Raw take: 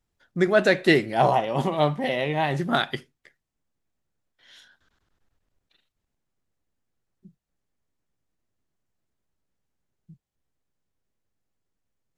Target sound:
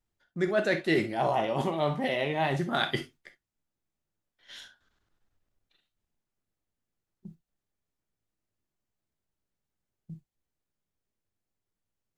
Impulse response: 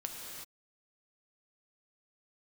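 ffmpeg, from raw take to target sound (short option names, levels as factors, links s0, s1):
-filter_complex "[0:a]agate=range=0.316:threshold=0.002:ratio=16:detection=peak,areverse,acompressor=threshold=0.0282:ratio=4,areverse[s0];[1:a]atrim=start_sample=2205,atrim=end_sample=3087[s1];[s0][s1]afir=irnorm=-1:irlink=0,volume=2.37"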